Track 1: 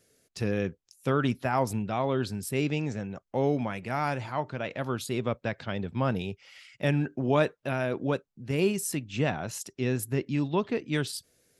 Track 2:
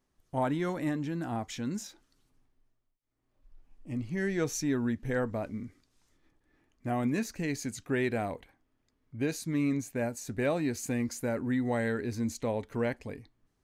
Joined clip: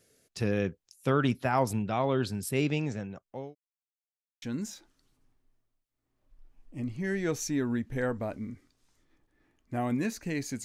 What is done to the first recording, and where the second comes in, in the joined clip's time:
track 1
2.59–3.55 fade out equal-power
3.55–4.42 mute
4.42 switch to track 2 from 1.55 s

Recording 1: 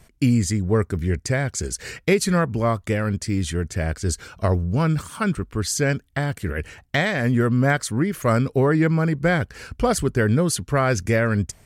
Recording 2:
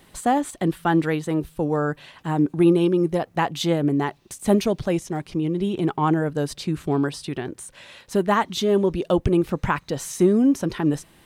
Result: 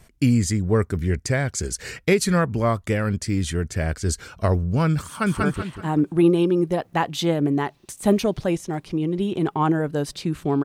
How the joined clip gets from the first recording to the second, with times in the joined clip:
recording 1
5.07–5.43 echo throw 0.19 s, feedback 35%, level -1.5 dB
5.43 switch to recording 2 from 1.85 s

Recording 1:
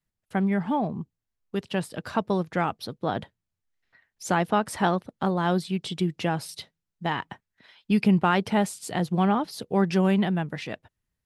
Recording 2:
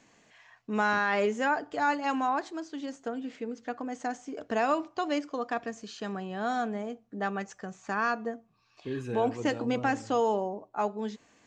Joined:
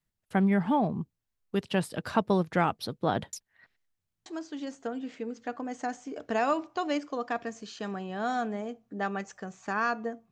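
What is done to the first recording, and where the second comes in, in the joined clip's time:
recording 1
3.33–4.26 reverse
4.26 switch to recording 2 from 2.47 s

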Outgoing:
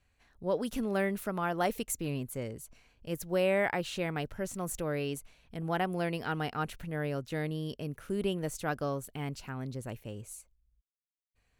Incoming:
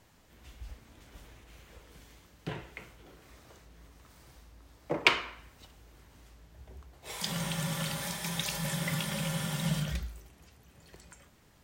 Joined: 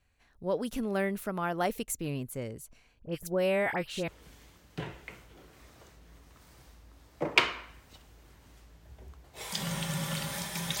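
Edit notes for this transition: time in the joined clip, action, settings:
outgoing
2.99–4.08 dispersion highs, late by 57 ms, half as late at 1800 Hz
4.08 switch to incoming from 1.77 s

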